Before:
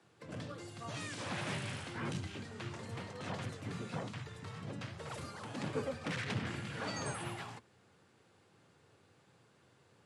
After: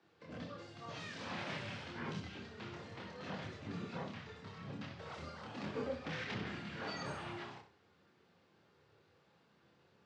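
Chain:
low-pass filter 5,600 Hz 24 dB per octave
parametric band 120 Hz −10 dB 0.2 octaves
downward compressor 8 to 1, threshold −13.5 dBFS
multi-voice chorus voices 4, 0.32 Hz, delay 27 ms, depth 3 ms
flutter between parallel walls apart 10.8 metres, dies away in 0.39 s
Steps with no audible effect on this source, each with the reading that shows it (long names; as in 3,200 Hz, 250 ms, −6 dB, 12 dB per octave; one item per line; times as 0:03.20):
downward compressor, threshold −13.5 dBFS: peak of its input −26.0 dBFS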